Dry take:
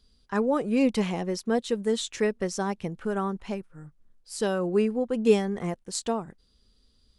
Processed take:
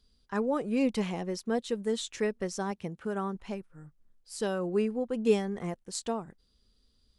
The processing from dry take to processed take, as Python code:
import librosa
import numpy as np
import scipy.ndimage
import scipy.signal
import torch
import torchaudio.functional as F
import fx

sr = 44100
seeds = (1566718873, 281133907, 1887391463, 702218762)

y = fx.highpass(x, sr, hz=50.0, slope=12, at=(2.71, 3.35))
y = F.gain(torch.from_numpy(y), -4.5).numpy()